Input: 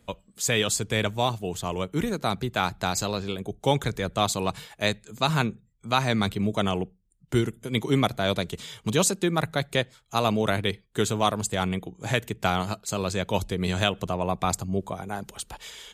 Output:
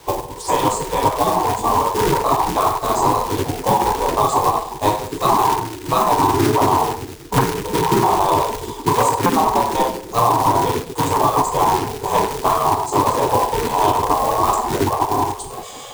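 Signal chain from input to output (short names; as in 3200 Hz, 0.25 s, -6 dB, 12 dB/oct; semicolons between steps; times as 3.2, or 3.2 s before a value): EQ curve 120 Hz 0 dB, 170 Hz +11 dB, 320 Hz +14 dB, 600 Hz -14 dB, 970 Hz +13 dB, 1400 Hz -25 dB, 2200 Hz -24 dB, 9000 Hz -10 dB, 13000 Hz -29 dB; shoebox room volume 94 m³, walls mixed, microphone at 1.1 m; companded quantiser 6-bit; spectral gate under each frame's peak -15 dB weak; dynamic EQ 1100 Hz, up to +7 dB, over -39 dBFS, Q 0.83; maximiser +12 dB; three-band squash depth 70%; gain -4 dB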